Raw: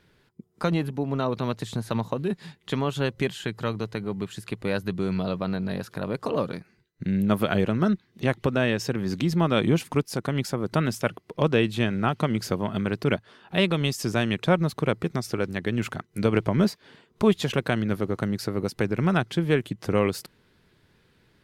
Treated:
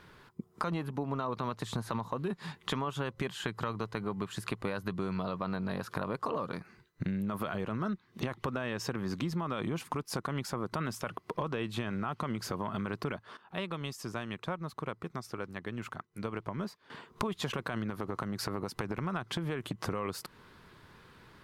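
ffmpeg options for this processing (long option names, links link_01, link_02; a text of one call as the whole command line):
ffmpeg -i in.wav -filter_complex "[0:a]asettb=1/sr,asplit=3[link_01][link_02][link_03];[link_01]atrim=end=2.714[link_04];[link_02]atrim=start=2.71:end=3.11,asetpts=PTS-STARTPTS,afade=type=in:duration=0.004:curve=qsin,afade=type=out:start_time=0.396:duration=0.004:curve=qsin,bandreject=frequency=4200:width=12[link_05];[link_03]atrim=start=3.106[link_06];[link_04][link_05]acrossfade=duration=0.004:curve1=hsin:curve2=qsin[link_07];[link_07][link_06]acrossfade=duration=0.004:curve1=qsin:curve2=hsin,asettb=1/sr,asplit=3[link_08][link_09][link_10];[link_08]atrim=end=17.904[link_11];[link_09]atrim=start=17.9:end=19.74,asetpts=PTS-STARTPTS,afade=type=in:duration=0.004:curve=qsin,afade=type=out:start_time=1.836:duration=0.004:curve=qsin,acompressor=threshold=-26dB:ratio=6:attack=3.2:release=140:knee=1:detection=peak[link_12];[link_10]atrim=start=19.736[link_13];[link_11][link_12]acrossfade=duration=0.004:curve1=hsin:curve2=qsin[link_14];[link_14][link_13]acrossfade=duration=0.004:curve1=qsin:curve2=hsin,asplit=3[link_15][link_16][link_17];[link_15]atrim=end=13.37,asetpts=PTS-STARTPTS,afade=type=out:start_time=13.04:duration=0.33:curve=log:silence=0.149624[link_18];[link_16]atrim=start=13.37:end=16.9,asetpts=PTS-STARTPTS,volume=-16.5dB[link_19];[link_17]atrim=start=16.9,asetpts=PTS-STARTPTS,afade=type=in:duration=0.33:curve=log:silence=0.149624[link_20];[link_18][link_19][link_20]concat=n=3:v=0:a=1,equalizer=frequency=1100:width=1.7:gain=10.5,alimiter=limit=-14.5dB:level=0:latency=1:release=22,acompressor=threshold=-36dB:ratio=6,volume=4dB" out.wav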